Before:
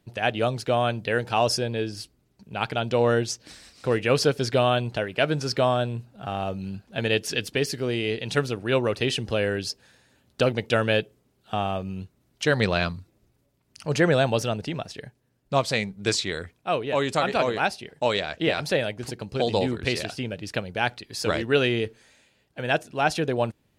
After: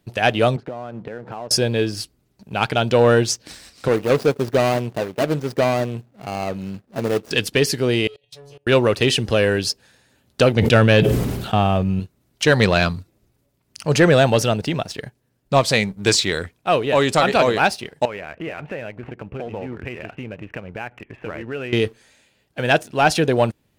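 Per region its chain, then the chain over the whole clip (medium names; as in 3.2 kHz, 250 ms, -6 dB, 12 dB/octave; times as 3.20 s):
0.56–1.51 s: resonant low shelf 120 Hz -7.5 dB, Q 1.5 + compression 8:1, threshold -34 dBFS + low-pass 1.2 kHz
3.88–7.31 s: median filter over 41 samples + high-pass 210 Hz 6 dB/octave
8.07–8.67 s: inharmonic resonator 140 Hz, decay 0.4 s, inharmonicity 0.002 + level held to a coarse grid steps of 22 dB + static phaser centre 560 Hz, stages 4
10.56–12.00 s: tone controls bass +6 dB, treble -4 dB + decay stretcher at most 38 dB/s
18.05–21.73 s: steep low-pass 2.8 kHz 72 dB/octave + compression 3:1, threshold -38 dBFS
whole clip: treble shelf 9.9 kHz +4 dB; waveshaping leveller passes 1; trim +4 dB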